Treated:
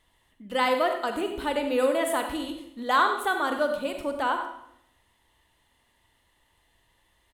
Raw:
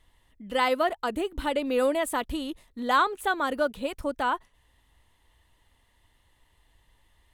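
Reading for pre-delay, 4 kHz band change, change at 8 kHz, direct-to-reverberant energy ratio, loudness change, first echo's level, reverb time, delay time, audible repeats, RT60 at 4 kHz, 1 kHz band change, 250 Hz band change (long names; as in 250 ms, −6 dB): 35 ms, +1.0 dB, +1.0 dB, 5.0 dB, +1.0 dB, −11.0 dB, 0.75 s, 95 ms, 1, 0.65 s, +1.0 dB, 0.0 dB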